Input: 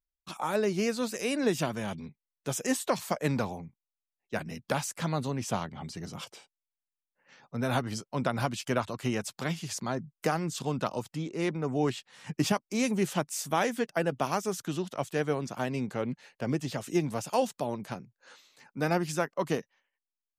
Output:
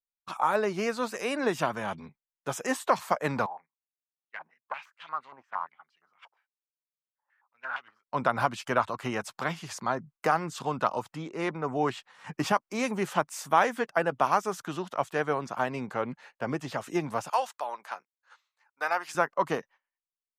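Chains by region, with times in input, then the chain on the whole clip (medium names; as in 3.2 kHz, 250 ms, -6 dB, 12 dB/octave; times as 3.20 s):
3.46–8.08 s: self-modulated delay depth 0.17 ms + step-sequenced band-pass 8.6 Hz 880–2900 Hz
17.30–19.15 s: high-pass 820 Hz + expander -58 dBFS
whole clip: gate -52 dBFS, range -14 dB; peaking EQ 1.1 kHz +14 dB 2.1 oct; trim -5.5 dB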